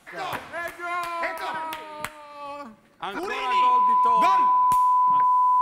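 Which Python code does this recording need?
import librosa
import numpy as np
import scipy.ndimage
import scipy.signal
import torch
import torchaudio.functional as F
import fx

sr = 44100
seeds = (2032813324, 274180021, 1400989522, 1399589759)

y = fx.fix_declip(x, sr, threshold_db=-12.0)
y = fx.notch(y, sr, hz=1000.0, q=30.0)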